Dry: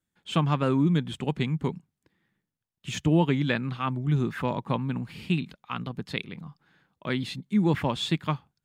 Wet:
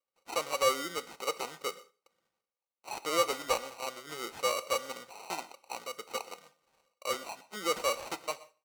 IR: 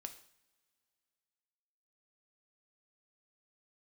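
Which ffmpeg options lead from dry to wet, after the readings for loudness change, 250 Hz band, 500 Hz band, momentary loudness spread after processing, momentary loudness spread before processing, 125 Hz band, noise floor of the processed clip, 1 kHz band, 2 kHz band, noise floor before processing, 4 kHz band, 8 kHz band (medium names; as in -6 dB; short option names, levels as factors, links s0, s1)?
-6.5 dB, -21.0 dB, -1.5 dB, 14 LU, 12 LU, -32.5 dB, under -85 dBFS, -1.0 dB, -3.0 dB, under -85 dBFS, -1.5 dB, +8.5 dB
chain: -filter_complex "[0:a]asplit=3[s0][s1][s2];[s0]bandpass=f=530:t=q:w=8,volume=1[s3];[s1]bandpass=f=1840:t=q:w=8,volume=0.501[s4];[s2]bandpass=f=2480:t=q:w=8,volume=0.355[s5];[s3][s4][s5]amix=inputs=3:normalize=0,acrusher=samples=26:mix=1:aa=0.000001,bass=f=250:g=-9,treble=f=4000:g=11,asplit=2[s6][s7];[s7]highpass=f=720:p=1,volume=5.62,asoftclip=type=tanh:threshold=0.299[s8];[s6][s8]amix=inputs=2:normalize=0,lowpass=f=1200:p=1,volume=0.501,tiltshelf=f=970:g=-4.5,aecho=1:1:122:0.0944,asplit=2[s9][s10];[1:a]atrim=start_sample=2205,afade=t=out:st=0.25:d=0.01,atrim=end_sample=11466,asetrate=43659,aresample=44100[s11];[s10][s11]afir=irnorm=-1:irlink=0,volume=1.5[s12];[s9][s12]amix=inputs=2:normalize=0"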